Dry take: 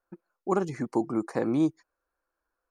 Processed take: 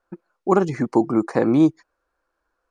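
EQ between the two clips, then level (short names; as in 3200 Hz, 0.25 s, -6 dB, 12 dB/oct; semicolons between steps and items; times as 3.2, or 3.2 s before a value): air absorption 56 m; +9.0 dB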